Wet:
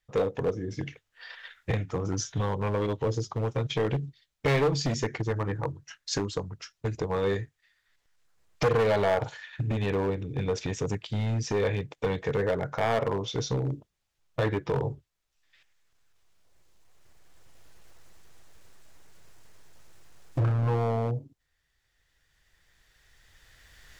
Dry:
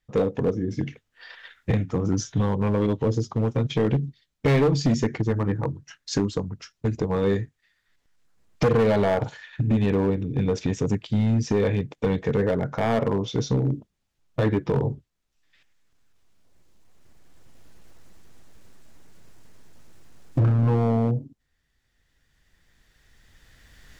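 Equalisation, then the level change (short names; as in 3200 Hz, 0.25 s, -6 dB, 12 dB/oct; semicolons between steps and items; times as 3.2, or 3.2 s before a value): bell 230 Hz -8.5 dB 0.81 oct; low shelf 460 Hz -4.5 dB; 0.0 dB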